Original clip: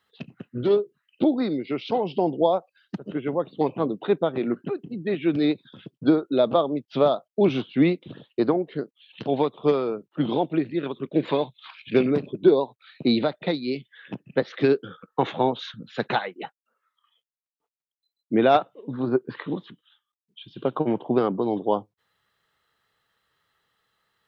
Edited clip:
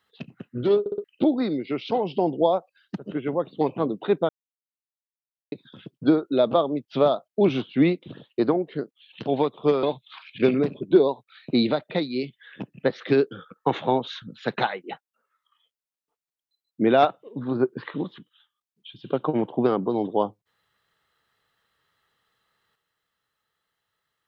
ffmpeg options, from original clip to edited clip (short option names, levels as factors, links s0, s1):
-filter_complex "[0:a]asplit=8[s0][s1][s2][s3][s4][s5][s6][s7];[s0]atrim=end=0.862[s8];[s1]atrim=start=0.798:end=0.862[s9];[s2]atrim=start=0.798:end=0.862[s10];[s3]atrim=start=0.798:end=0.862[s11];[s4]atrim=start=1.038:end=4.29,asetpts=PTS-STARTPTS,afade=t=out:st=3.248:d=0.004:c=hsin[s12];[s5]atrim=start=4.29:end=5.52,asetpts=PTS-STARTPTS,volume=0[s13];[s6]atrim=start=5.52:end=9.832,asetpts=PTS-STARTPTS,afade=t=in:d=0.004:c=hsin[s14];[s7]atrim=start=11.348[s15];[s8][s9]acrossfade=d=0.004:c1=hsin:c2=hsin[s16];[s16][s10]acrossfade=d=0.004:c1=hsin:c2=hsin[s17];[s17][s11]acrossfade=d=0.004:c1=hsin:c2=hsin[s18];[s12][s13][s14]concat=n=3:v=0:a=1[s19];[s18][s19]acrossfade=d=0.004:c1=hsin:c2=hsin[s20];[s20][s15]acrossfade=d=0.004:c1=hsin:c2=hsin"